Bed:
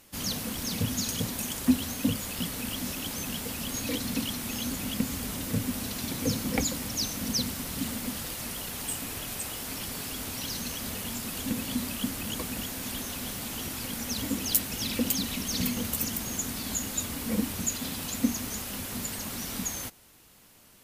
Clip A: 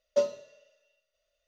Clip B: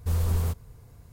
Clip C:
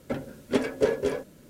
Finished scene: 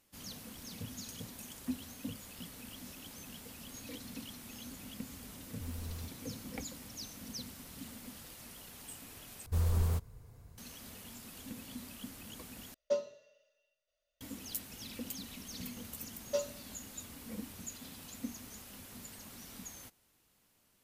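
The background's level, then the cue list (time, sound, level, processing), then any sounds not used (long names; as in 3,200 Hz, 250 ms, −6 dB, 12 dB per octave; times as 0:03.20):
bed −15 dB
0:05.55: mix in B −18 dB
0:09.46: overwrite with B −5 dB
0:12.74: overwrite with A −7 dB
0:16.17: mix in A −7 dB + spectral tilt +2.5 dB per octave
not used: C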